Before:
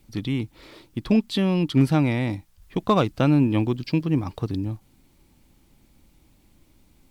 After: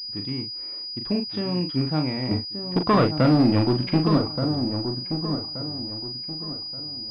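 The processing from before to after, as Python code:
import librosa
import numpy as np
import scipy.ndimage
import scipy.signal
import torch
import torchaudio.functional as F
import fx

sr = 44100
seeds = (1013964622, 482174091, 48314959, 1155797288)

y = fx.low_shelf(x, sr, hz=110.0, db=-6.0)
y = fx.leveller(y, sr, passes=3, at=(2.31, 4.18))
y = fx.doubler(y, sr, ms=39.0, db=-6.5)
y = fx.echo_wet_lowpass(y, sr, ms=1177, feedback_pct=34, hz=1300.0, wet_db=-7)
y = fx.pwm(y, sr, carrier_hz=4900.0)
y = y * librosa.db_to_amplitude(-4.5)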